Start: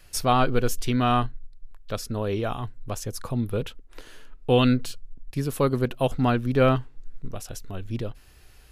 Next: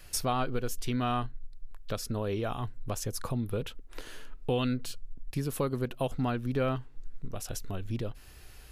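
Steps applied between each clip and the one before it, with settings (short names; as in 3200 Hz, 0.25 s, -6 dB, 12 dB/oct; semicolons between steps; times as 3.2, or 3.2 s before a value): high shelf 11000 Hz +3 dB; compressor 2.5:1, threshold -33 dBFS, peak gain reduction 12.5 dB; gain +1.5 dB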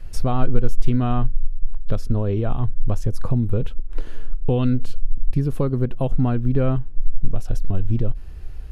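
tilt -3.5 dB/oct; gain +2.5 dB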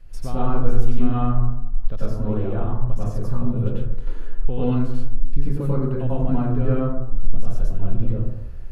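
plate-style reverb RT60 0.87 s, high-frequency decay 0.3×, pre-delay 80 ms, DRR -8.5 dB; gain -10.5 dB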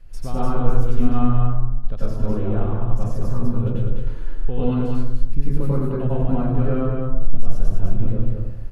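echo 0.203 s -4.5 dB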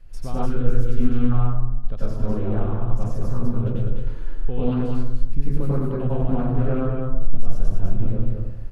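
spectral gain 0.46–1.32, 520–1300 Hz -17 dB; Doppler distortion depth 0.24 ms; gain -1.5 dB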